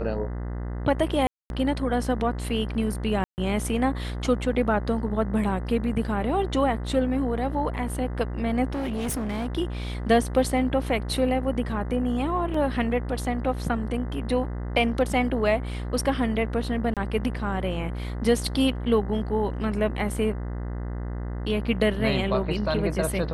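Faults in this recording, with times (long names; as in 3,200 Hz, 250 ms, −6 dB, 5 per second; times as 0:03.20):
mains buzz 60 Hz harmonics 34 −31 dBFS
0:01.27–0:01.50: drop-out 231 ms
0:03.24–0:03.38: drop-out 139 ms
0:08.73–0:09.48: clipping −25.5 dBFS
0:12.54: drop-out 3.9 ms
0:16.94–0:16.97: drop-out 27 ms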